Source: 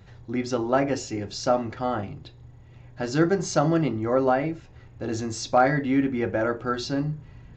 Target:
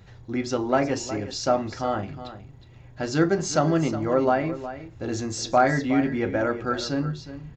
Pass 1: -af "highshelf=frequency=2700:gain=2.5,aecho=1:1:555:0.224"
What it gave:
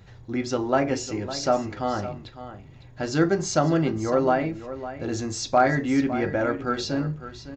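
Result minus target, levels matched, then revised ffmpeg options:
echo 191 ms late
-af "highshelf=frequency=2700:gain=2.5,aecho=1:1:364:0.224"

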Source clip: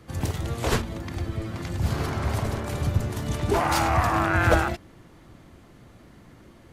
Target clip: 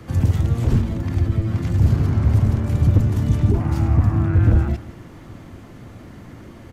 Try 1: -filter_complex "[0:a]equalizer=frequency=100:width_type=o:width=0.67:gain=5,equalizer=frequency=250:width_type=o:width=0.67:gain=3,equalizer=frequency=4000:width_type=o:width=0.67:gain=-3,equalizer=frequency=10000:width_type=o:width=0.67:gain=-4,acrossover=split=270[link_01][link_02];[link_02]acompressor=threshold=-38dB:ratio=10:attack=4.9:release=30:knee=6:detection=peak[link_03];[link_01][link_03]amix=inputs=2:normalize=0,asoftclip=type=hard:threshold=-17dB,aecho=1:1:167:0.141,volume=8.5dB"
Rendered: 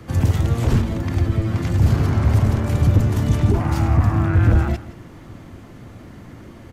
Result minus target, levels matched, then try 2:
downward compressor: peak gain reduction −6.5 dB
-filter_complex "[0:a]equalizer=frequency=100:width_type=o:width=0.67:gain=5,equalizer=frequency=250:width_type=o:width=0.67:gain=3,equalizer=frequency=4000:width_type=o:width=0.67:gain=-3,equalizer=frequency=10000:width_type=o:width=0.67:gain=-4,acrossover=split=270[link_01][link_02];[link_02]acompressor=threshold=-45dB:ratio=10:attack=4.9:release=30:knee=6:detection=peak[link_03];[link_01][link_03]amix=inputs=2:normalize=0,asoftclip=type=hard:threshold=-17dB,aecho=1:1:167:0.141,volume=8.5dB"

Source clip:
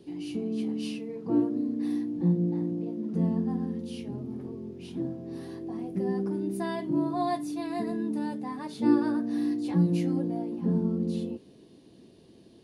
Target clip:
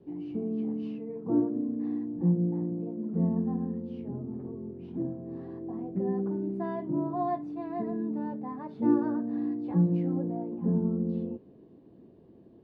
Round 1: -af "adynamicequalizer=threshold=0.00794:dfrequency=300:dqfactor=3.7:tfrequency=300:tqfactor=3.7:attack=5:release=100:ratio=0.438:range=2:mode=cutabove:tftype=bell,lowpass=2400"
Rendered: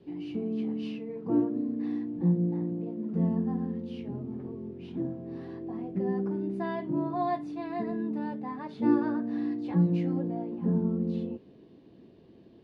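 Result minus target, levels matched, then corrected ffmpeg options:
2,000 Hz band +7.0 dB
-af "adynamicequalizer=threshold=0.00794:dfrequency=300:dqfactor=3.7:tfrequency=300:tqfactor=3.7:attack=5:release=100:ratio=0.438:range=2:mode=cutabove:tftype=bell,lowpass=1100"

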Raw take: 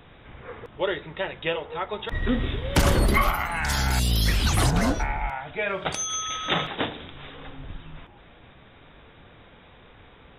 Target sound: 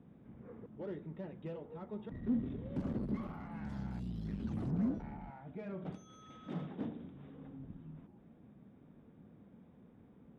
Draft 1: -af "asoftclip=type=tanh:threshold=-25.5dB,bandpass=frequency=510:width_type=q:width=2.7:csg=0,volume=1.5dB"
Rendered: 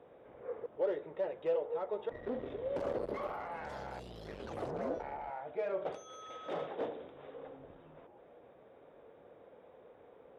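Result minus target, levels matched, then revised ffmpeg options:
250 Hz band −11.0 dB
-af "asoftclip=type=tanh:threshold=-25.5dB,bandpass=frequency=210:width_type=q:width=2.7:csg=0,volume=1.5dB"

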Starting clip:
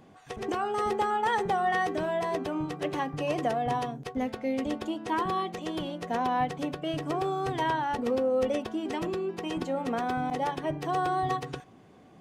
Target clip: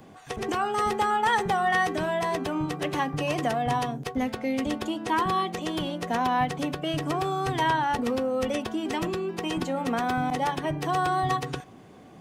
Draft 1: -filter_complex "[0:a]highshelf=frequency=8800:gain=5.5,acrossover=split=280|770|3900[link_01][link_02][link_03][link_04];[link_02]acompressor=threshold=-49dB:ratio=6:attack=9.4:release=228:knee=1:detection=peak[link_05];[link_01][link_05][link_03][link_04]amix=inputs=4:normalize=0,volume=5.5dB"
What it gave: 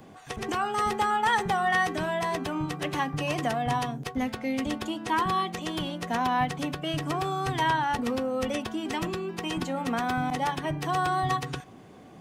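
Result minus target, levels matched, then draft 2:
downward compressor: peak gain reduction +8 dB
-filter_complex "[0:a]highshelf=frequency=8800:gain=5.5,acrossover=split=280|770|3900[link_01][link_02][link_03][link_04];[link_02]acompressor=threshold=-39.5dB:ratio=6:attack=9.4:release=228:knee=1:detection=peak[link_05];[link_01][link_05][link_03][link_04]amix=inputs=4:normalize=0,volume=5.5dB"

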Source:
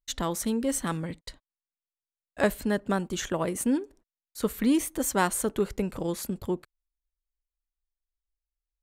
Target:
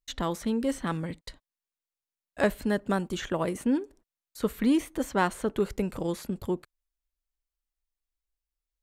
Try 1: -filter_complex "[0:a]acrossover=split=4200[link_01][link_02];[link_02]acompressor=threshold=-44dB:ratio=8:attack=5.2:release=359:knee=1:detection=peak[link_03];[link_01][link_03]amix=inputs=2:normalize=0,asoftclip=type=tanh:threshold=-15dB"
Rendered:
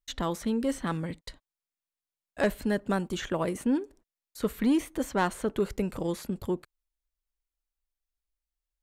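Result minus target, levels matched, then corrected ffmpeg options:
soft clipping: distortion +13 dB
-filter_complex "[0:a]acrossover=split=4200[link_01][link_02];[link_02]acompressor=threshold=-44dB:ratio=8:attack=5.2:release=359:knee=1:detection=peak[link_03];[link_01][link_03]amix=inputs=2:normalize=0,asoftclip=type=tanh:threshold=-7dB"

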